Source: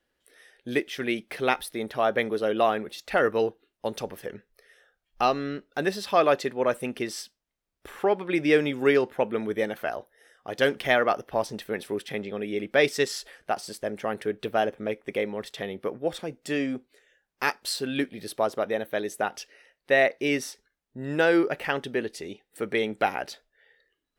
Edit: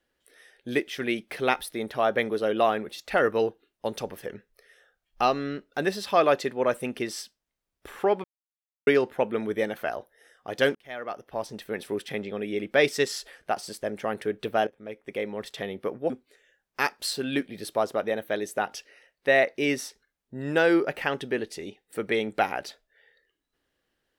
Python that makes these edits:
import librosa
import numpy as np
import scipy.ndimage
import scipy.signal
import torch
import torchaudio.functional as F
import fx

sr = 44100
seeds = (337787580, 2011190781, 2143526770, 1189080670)

y = fx.edit(x, sr, fx.silence(start_s=8.24, length_s=0.63),
    fx.fade_in_span(start_s=10.75, length_s=1.18),
    fx.fade_in_from(start_s=14.67, length_s=0.8, floor_db=-19.0),
    fx.cut(start_s=16.1, length_s=0.63), tone=tone)